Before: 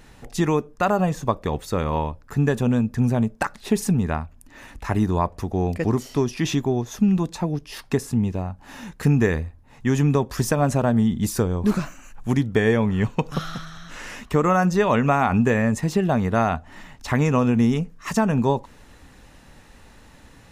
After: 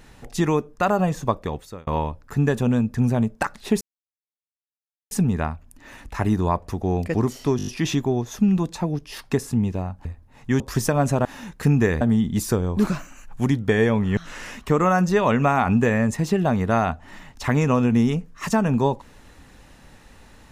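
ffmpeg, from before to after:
-filter_complex "[0:a]asplit=13[a][b][c][d][e][f][g][h][i][j][k][l][m];[a]atrim=end=1.87,asetpts=PTS-STARTPTS,afade=t=out:st=1.34:d=0.53[n];[b]atrim=start=1.87:end=3.81,asetpts=PTS-STARTPTS,afade=t=in:d=0.004:c=hsin,afade=t=out:st=1.936:d=0.004:c=hsin,apad=pad_dur=1.3[o];[c]atrim=start=3.81:end=6.292,asetpts=PTS-STARTPTS,afade=t=in:d=0.004:c=hsin[p];[d]atrim=start=6.268:end=6.292[q];[e]atrim=start=6.268:end=6.292[r];[f]atrim=start=6.268:end=6.292[s];[g]atrim=start=6.268:end=6.292[t];[h]atrim=start=6.268:end=8.652[u];[i]atrim=start=9.408:end=9.962[v];[j]atrim=start=10.228:end=10.882[w];[k]atrim=start=8.648:end=9.412[x];[l]atrim=start=10.878:end=13.042[y];[m]atrim=start=13.808[z];[n][o][p]concat=n=3:v=0:a=1[aa];[aa][q]acrossfade=d=0.004:c1=hsin:c2=hsin[ab];[ab][r]acrossfade=d=0.004:c1=hsin:c2=hsin[ac];[ac][s]acrossfade=d=0.004:c1=hsin:c2=hsin[ad];[ad][t]acrossfade=d=0.004:c1=hsin:c2=hsin[ae];[ae][u]acrossfade=d=0.004:c1=hsin:c2=hsin[af];[af][v]acrossfade=d=0.004:c1=hsin:c2=hsin[ag];[ag][w]acrossfade=d=0.004:c1=hsin:c2=hsin[ah];[ah][x]acrossfade=d=0.004:c1=hsin:c2=hsin[ai];[ai][y]acrossfade=d=0.004:c1=hsin:c2=hsin[aj];[aj][z]acrossfade=d=0.004:c1=hsin:c2=hsin"

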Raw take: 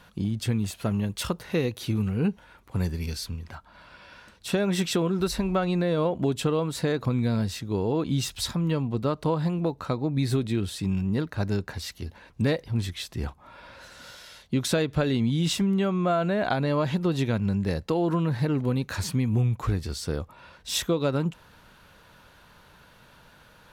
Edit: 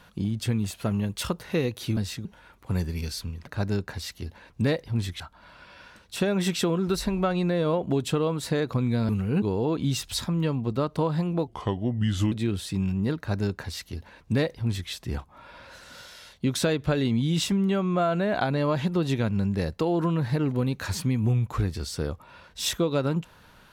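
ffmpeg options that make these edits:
-filter_complex "[0:a]asplit=9[a][b][c][d][e][f][g][h][i];[a]atrim=end=1.972[j];[b]atrim=start=7.408:end=7.692[k];[c]atrim=start=2.298:end=3.522[l];[d]atrim=start=11.268:end=13.002[m];[e]atrim=start=3.518:end=7.412[n];[f]atrim=start=1.968:end=2.302[o];[g]atrim=start=7.688:end=9.744[p];[h]atrim=start=9.74:end=10.41,asetpts=PTS-STARTPTS,asetrate=34839,aresample=44100,atrim=end_sample=37401,asetpts=PTS-STARTPTS[q];[i]atrim=start=10.406[r];[j][k]acrossfade=d=0.004:c1=hsin:c2=hsin[s];[s][l]acrossfade=d=0.004:c1=hsin:c2=hsin[t];[t][m]acrossfade=d=0.004:c1=hsin:c2=hsin[u];[u][n]acrossfade=d=0.004:c1=hsin:c2=hsin[v];[v][o]acrossfade=d=0.004:c1=hsin:c2=hsin[w];[w][p]acrossfade=d=0.004:c1=hsin:c2=hsin[x];[x][q]acrossfade=d=0.004:c1=hsin:c2=hsin[y];[y][r]acrossfade=d=0.004:c1=hsin:c2=hsin"

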